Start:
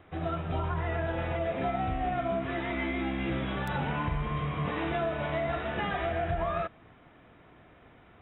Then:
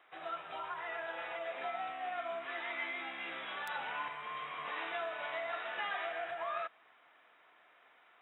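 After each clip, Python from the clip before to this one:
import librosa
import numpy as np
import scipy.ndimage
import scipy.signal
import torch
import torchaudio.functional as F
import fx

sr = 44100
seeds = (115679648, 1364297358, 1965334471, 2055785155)

y = scipy.signal.sosfilt(scipy.signal.butter(2, 930.0, 'highpass', fs=sr, output='sos'), x)
y = y * librosa.db_to_amplitude(-2.5)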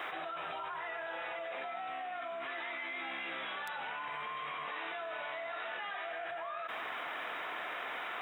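y = fx.env_flatten(x, sr, amount_pct=100)
y = y * librosa.db_to_amplitude(-4.5)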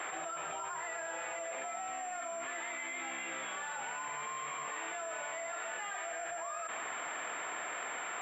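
y = fx.pwm(x, sr, carrier_hz=7400.0)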